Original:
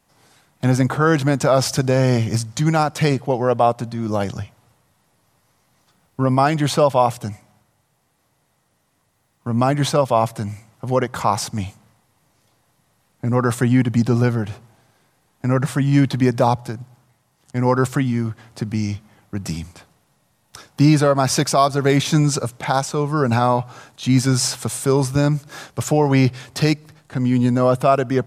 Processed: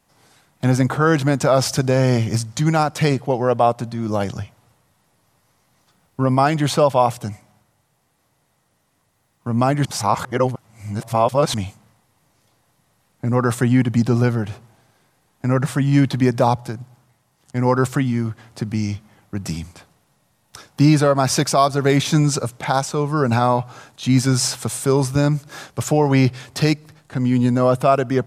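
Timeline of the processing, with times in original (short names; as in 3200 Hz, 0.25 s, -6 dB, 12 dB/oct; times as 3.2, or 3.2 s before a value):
9.85–11.54 reverse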